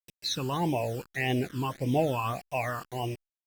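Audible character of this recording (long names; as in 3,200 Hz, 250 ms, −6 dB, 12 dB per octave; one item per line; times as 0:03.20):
a quantiser's noise floor 8 bits, dither none
phaser sweep stages 12, 1.7 Hz, lowest notch 640–1,400 Hz
Opus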